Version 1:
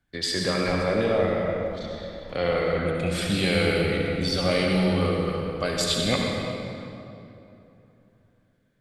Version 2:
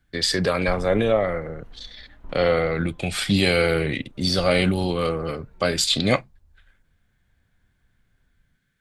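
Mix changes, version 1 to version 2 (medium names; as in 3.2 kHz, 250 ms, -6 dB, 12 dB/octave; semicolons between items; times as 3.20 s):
speech +9.5 dB; first sound: add tilt EQ -2.5 dB/octave; reverb: off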